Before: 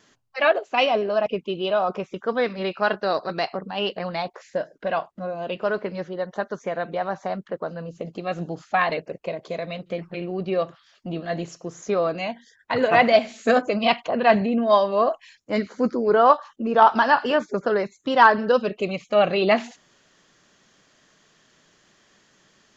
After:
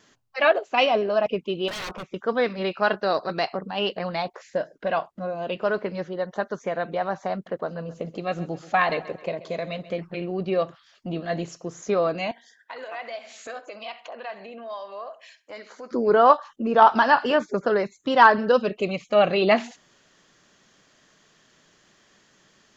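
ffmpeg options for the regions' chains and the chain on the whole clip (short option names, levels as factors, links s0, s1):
-filter_complex "[0:a]asettb=1/sr,asplit=3[s0][s1][s2];[s0]atrim=end=1.684[s3];[s1]atrim=start=1.68:end=2.14,asetpts=PTS-STARTPTS,afade=t=in:d=0.004:c=qsin,afade=t=out:st=0.456:d=0.004:c=qsin,lowpass=f=2500:p=1,bandreject=f=430:w=7.5,aeval=exprs='0.0398*(abs(mod(val(0)/0.0398+3,4)-2)-1)':c=same[s4];[s2]atrim=start=2.136[s5];[s3][s4]acrossfade=d=0.004:c1=hsin:c2=qsin[s6];[s6][s5]acrossfade=d=0.004:c1=qsin:c2=hsin,asettb=1/sr,asplit=3[s7][s8][s9];[s7]atrim=end=7.334[s10];[s8]atrim=start=7.33:end=9.99,asetpts=PTS-STARTPTS,afade=t=in:d=0.004:c=qsin,afade=t=out:st=2.656:d=0.004:c=qsin,acompressor=mode=upward:threshold=0.00794:ratio=2.5:attack=3.2:release=140:knee=2.83:detection=peak,aecho=1:1:132|264|396|528:0.141|0.0607|0.0261|0.0112,atrim=end_sample=117306[s11];[s9]atrim=start=9.986[s12];[s10][s11]acrossfade=d=0.004:c1=hsin:c2=qsin[s13];[s13][s12]acrossfade=d=0.004:c1=qsin:c2=hsin,asettb=1/sr,asplit=3[s14][s15][s16];[s14]atrim=end=12.314[s17];[s15]atrim=start=12.31:end=15.91,asetpts=PTS-STARTPTS,afade=t=in:d=0.004:c=qsin,afade=t=out:st=3.596:d=0.004:c=qsin,highpass=600,acompressor=threshold=0.01:ratio=2.5:attack=3.2:release=140:knee=1:detection=peak,asplit=2[s18][s19];[s19]adelay=65,lowpass=f=3100:p=1,volume=0.188,asplit=2[s20][s21];[s21]adelay=65,lowpass=f=3100:p=1,volume=0.4,asplit=2[s22][s23];[s23]adelay=65,lowpass=f=3100:p=1,volume=0.4,asplit=2[s24][s25];[s25]adelay=65,lowpass=f=3100:p=1,volume=0.4[s26];[s18][s20][s22][s24][s26]amix=inputs=5:normalize=0,atrim=end_sample=158760[s27];[s16]atrim=start=15.906[s28];[s17][s27]acrossfade=d=0.004:c1=hsin:c2=qsin[s29];[s29][s28]acrossfade=d=0.004:c1=qsin:c2=hsin"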